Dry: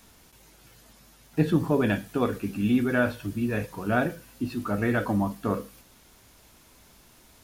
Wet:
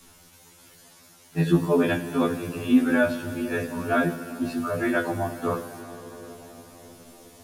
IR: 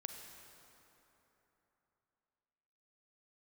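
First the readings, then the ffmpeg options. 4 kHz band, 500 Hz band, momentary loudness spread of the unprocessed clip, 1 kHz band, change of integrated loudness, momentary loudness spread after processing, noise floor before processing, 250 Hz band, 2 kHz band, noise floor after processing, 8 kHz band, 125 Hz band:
+3.5 dB, +3.0 dB, 9 LU, +2.0 dB, +2.0 dB, 19 LU, -56 dBFS, +2.0 dB, +2.5 dB, -54 dBFS, +5.0 dB, -0.5 dB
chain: -filter_complex "[0:a]asplit=2[a][b];[1:a]atrim=start_sample=2205,asetrate=22491,aresample=44100,highshelf=f=5.4k:g=8.5[c];[b][c]afir=irnorm=-1:irlink=0,volume=-4dB[d];[a][d]amix=inputs=2:normalize=0,afftfilt=real='re*2*eq(mod(b,4),0)':imag='im*2*eq(mod(b,4),0)':win_size=2048:overlap=0.75"

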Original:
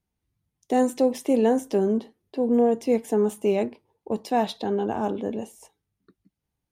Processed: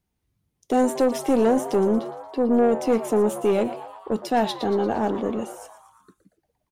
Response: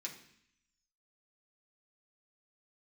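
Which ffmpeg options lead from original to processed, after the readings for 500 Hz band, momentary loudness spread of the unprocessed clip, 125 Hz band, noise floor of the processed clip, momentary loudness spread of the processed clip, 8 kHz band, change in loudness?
+2.0 dB, 11 LU, n/a, -77 dBFS, 10 LU, +3.5 dB, +1.5 dB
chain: -filter_complex "[0:a]aeval=exprs='(tanh(7.08*val(0)+0.15)-tanh(0.15))/7.08':c=same,asplit=7[a][b][c][d][e][f][g];[b]adelay=116,afreqshift=140,volume=-14dB[h];[c]adelay=232,afreqshift=280,volume=-18.6dB[i];[d]adelay=348,afreqshift=420,volume=-23.2dB[j];[e]adelay=464,afreqshift=560,volume=-27.7dB[k];[f]adelay=580,afreqshift=700,volume=-32.3dB[l];[g]adelay=696,afreqshift=840,volume=-36.9dB[m];[a][h][i][j][k][l][m]amix=inputs=7:normalize=0,volume=4dB"

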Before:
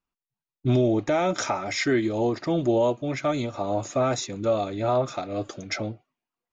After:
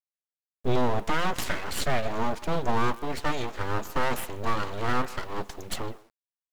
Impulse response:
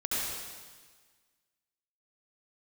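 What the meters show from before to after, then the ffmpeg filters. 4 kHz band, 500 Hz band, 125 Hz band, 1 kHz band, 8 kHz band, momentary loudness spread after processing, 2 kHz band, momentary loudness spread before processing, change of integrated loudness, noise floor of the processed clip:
-1.0 dB, -7.5 dB, -4.5 dB, +0.5 dB, n/a, 9 LU, +1.0 dB, 9 LU, -4.5 dB, under -85 dBFS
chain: -filter_complex "[0:a]aeval=exprs='abs(val(0))':c=same,asplit=2[a][b];[b]adelay=150,highpass=300,lowpass=3.4k,asoftclip=type=hard:threshold=-21dB,volume=-15dB[c];[a][c]amix=inputs=2:normalize=0,acrusher=bits=7:dc=4:mix=0:aa=0.000001"

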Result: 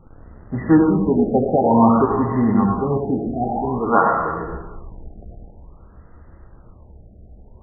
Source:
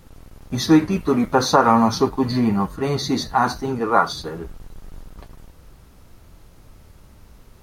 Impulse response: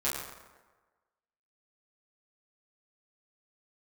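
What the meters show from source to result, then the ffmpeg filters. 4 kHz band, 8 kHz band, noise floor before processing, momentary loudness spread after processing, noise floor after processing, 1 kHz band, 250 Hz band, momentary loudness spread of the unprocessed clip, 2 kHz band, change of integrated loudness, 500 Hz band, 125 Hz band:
under -40 dB, under -40 dB, -49 dBFS, 13 LU, -47 dBFS, 0.0 dB, +2.5 dB, 13 LU, -3.0 dB, +1.5 dB, +2.5 dB, +2.5 dB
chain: -filter_complex "[0:a]asuperstop=centerf=2500:order=20:qfactor=2.4,asplit=2[a][b];[1:a]atrim=start_sample=2205,adelay=78[c];[b][c]afir=irnorm=-1:irlink=0,volume=-8dB[d];[a][d]amix=inputs=2:normalize=0,afftfilt=real='re*lt(b*sr/1024,770*pow(2300/770,0.5+0.5*sin(2*PI*0.52*pts/sr)))':imag='im*lt(b*sr/1024,770*pow(2300/770,0.5+0.5*sin(2*PI*0.52*pts/sr)))':win_size=1024:overlap=0.75"

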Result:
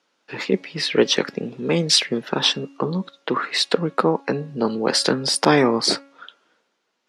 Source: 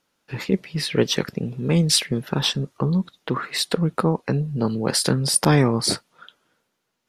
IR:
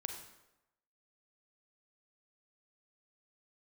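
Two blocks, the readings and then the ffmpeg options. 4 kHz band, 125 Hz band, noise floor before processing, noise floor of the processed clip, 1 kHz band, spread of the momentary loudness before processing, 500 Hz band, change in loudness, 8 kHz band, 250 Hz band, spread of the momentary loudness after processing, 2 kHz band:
+3.5 dB, -7.5 dB, -75 dBFS, -72 dBFS, +4.5 dB, 10 LU, +4.0 dB, +1.5 dB, -2.0 dB, -0.5 dB, 10 LU, +4.5 dB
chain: -filter_complex "[0:a]acrossover=split=220 7300:gain=0.0708 1 0.0708[a][b][c];[a][b][c]amix=inputs=3:normalize=0,bandreject=f=277.3:t=h:w=4,bandreject=f=554.6:t=h:w=4,bandreject=f=831.9:t=h:w=4,bandreject=f=1.1092k:t=h:w=4,bandreject=f=1.3865k:t=h:w=4,bandreject=f=1.6638k:t=h:w=4,bandreject=f=1.9411k:t=h:w=4,bandreject=f=2.2184k:t=h:w=4,bandreject=f=2.4957k:t=h:w=4,bandreject=f=2.773k:t=h:w=4,volume=4.5dB"

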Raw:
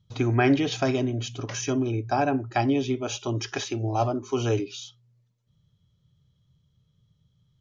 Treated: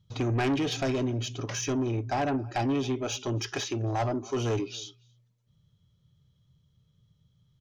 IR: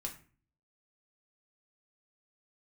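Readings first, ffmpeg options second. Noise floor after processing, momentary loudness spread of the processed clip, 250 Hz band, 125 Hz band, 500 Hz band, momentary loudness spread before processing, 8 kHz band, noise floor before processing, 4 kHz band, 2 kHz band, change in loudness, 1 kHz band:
-69 dBFS, 5 LU, -4.0 dB, -3.0 dB, -4.0 dB, 9 LU, n/a, -69 dBFS, -1.0 dB, -4.5 dB, -3.5 dB, -4.5 dB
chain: -filter_complex "[0:a]asplit=2[a][b];[b]adelay=274.1,volume=-27dB,highshelf=f=4k:g=-6.17[c];[a][c]amix=inputs=2:normalize=0,asoftclip=type=tanh:threshold=-23dB"

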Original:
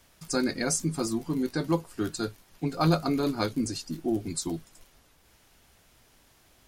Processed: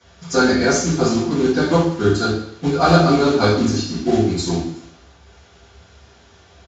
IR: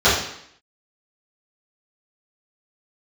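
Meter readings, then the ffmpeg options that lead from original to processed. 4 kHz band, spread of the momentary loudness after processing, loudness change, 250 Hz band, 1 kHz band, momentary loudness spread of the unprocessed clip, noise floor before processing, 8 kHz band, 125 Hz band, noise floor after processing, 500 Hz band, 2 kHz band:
+11.5 dB, 9 LU, +12.0 dB, +11.0 dB, +14.0 dB, 9 LU, -62 dBFS, +6.0 dB, +11.5 dB, -50 dBFS, +14.5 dB, +14.5 dB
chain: -filter_complex "[0:a]aresample=16000,acrusher=bits=4:mode=log:mix=0:aa=0.000001,aresample=44100,asoftclip=type=hard:threshold=-15dB[a];[1:a]atrim=start_sample=2205[b];[a][b]afir=irnorm=-1:irlink=0,volume=-11dB"

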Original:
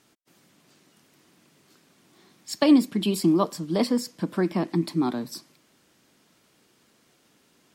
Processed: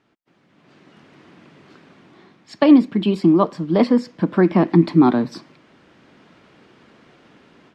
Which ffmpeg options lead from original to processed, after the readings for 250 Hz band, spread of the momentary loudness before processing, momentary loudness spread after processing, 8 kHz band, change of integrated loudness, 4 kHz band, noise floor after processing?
+7.5 dB, 14 LU, 8 LU, under -10 dB, +7.5 dB, -1.0 dB, -60 dBFS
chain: -af "dynaudnorm=f=480:g=3:m=14dB,lowpass=2.5k"

